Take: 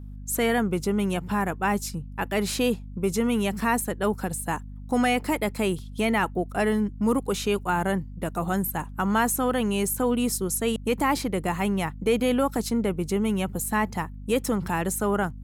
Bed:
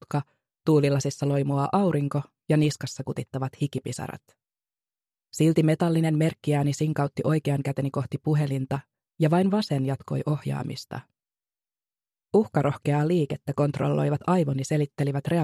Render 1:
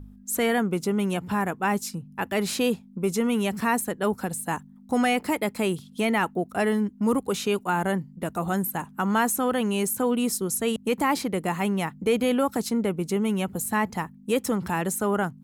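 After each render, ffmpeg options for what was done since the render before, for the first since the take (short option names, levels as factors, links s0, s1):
-af "bandreject=f=50:t=h:w=4,bandreject=f=100:t=h:w=4,bandreject=f=150:t=h:w=4"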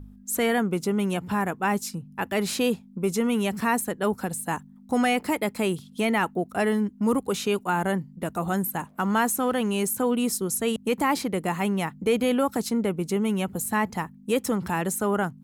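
-filter_complex "[0:a]asettb=1/sr,asplit=3[s0][s1][s2];[s0]atrim=end=8.874[s3];[s1]atrim=start=8.87:end=9.82,asetpts=PTS-STARTPTS,afade=t=in:d=0.004:c=qsin,afade=t=out:st=0.946:d=0.004:c=qsin,aeval=exprs='sgn(val(0))*max(abs(val(0))-0.00224,0)':c=same[s4];[s2]atrim=start=9.816[s5];[s3][s4]acrossfade=d=0.004:c1=hsin:c2=qsin[s6];[s6][s5]acrossfade=d=0.004:c1=qsin:c2=hsin"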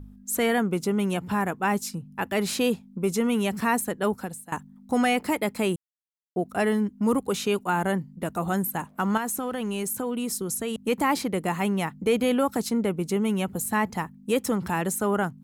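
-filter_complex "[0:a]asettb=1/sr,asplit=3[s0][s1][s2];[s0]atrim=end=9.174[s3];[s1]atrim=start=9.17:end=10.88,asetpts=PTS-STARTPTS,afade=t=in:d=0.004:c=qsin,afade=t=out:st=1.706:d=0.004:c=qsin,acompressor=threshold=0.0562:ratio=6:attack=3.2:release=140:knee=1:detection=peak[s4];[s2]atrim=start=10.876[s5];[s3][s4]acrossfade=d=0.004:c1=hsin:c2=qsin[s6];[s6][s5]acrossfade=d=0.004:c1=qsin:c2=hsin,asplit=4[s7][s8][s9][s10];[s7]atrim=end=4.52,asetpts=PTS-STARTPTS,afade=t=out:st=4.06:d=0.46:silence=0.125893[s11];[s8]atrim=start=4.52:end=5.76,asetpts=PTS-STARTPTS,afade=t=in:d=0.004:c=hsin:silence=0.125893,afade=t=out:st=1.236:d=0.004:c=hsin[s12];[s9]atrim=start=5.76:end=6.36,asetpts=PTS-STARTPTS,volume=0[s13];[s10]atrim=start=6.36,asetpts=PTS-STARTPTS,afade=t=in:d=0.004:c=hsin[s14];[s11][s12][s13][s14]concat=n=4:v=0:a=1"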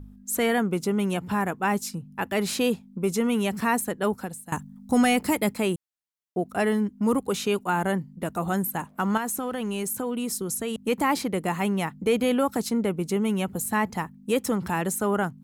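-filter_complex "[0:a]asettb=1/sr,asplit=3[s0][s1][s2];[s0]atrim=end=4.464[s3];[s1]atrim=start=4.46:end=5.54,asetpts=PTS-STARTPTS,afade=t=in:d=0.004:c=qsin,afade=t=out:st=1.076:d=0.004:c=qsin,bass=f=250:g=7,treble=f=4000:g=6[s4];[s2]atrim=start=5.536[s5];[s3][s4]acrossfade=d=0.004:c1=hsin:c2=qsin[s6];[s6][s5]acrossfade=d=0.004:c1=qsin:c2=hsin"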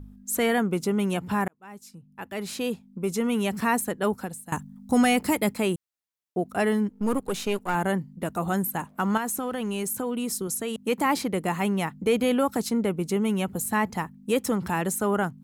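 -filter_complex "[0:a]asettb=1/sr,asplit=3[s0][s1][s2];[s0]atrim=end=6.894[s3];[s1]atrim=start=6.89:end=7.75,asetpts=PTS-STARTPTS,afade=t=in:d=0.004:c=qsin,afade=t=out:st=0.856:d=0.004:c=qsin,aeval=exprs='if(lt(val(0),0),0.447*val(0),val(0))':c=same[s4];[s2]atrim=start=7.746[s5];[s3][s4]acrossfade=d=0.004:c1=hsin:c2=qsin[s6];[s6][s5]acrossfade=d=0.004:c1=qsin:c2=hsin,asettb=1/sr,asplit=3[s7][s8][s9];[s7]atrim=end=10.474[s10];[s8]atrim=start=10.47:end=11.06,asetpts=PTS-STARTPTS,afade=t=in:d=0.004:c=qsin,afade=t=out:st=0.586:d=0.004:c=qsin,highpass=f=140:p=1[s11];[s9]atrim=start=11.056[s12];[s10][s11]acrossfade=d=0.004:c1=hsin:c2=qsin[s13];[s13][s12]acrossfade=d=0.004:c1=qsin:c2=hsin,asplit=2[s14][s15];[s14]atrim=end=1.48,asetpts=PTS-STARTPTS,afade=t=out:st=1.476:d=0.004:c=hsin[s16];[s15]atrim=start=1.48,asetpts=PTS-STARTPTS,afade=t=in:d=2.1[s17];[s16][s17]concat=n=2:v=0:a=1"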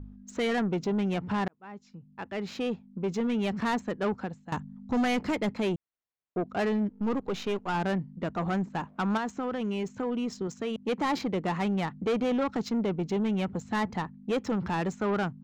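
-af "aresample=16000,asoftclip=type=tanh:threshold=0.075,aresample=44100,adynamicsmooth=sensitivity=4.5:basefreq=2800"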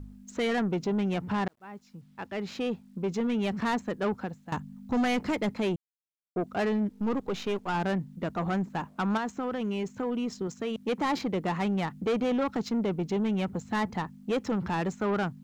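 -af "acrusher=bits=11:mix=0:aa=0.000001"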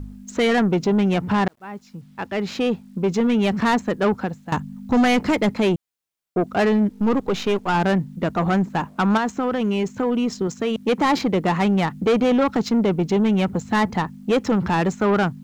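-af "volume=2.99"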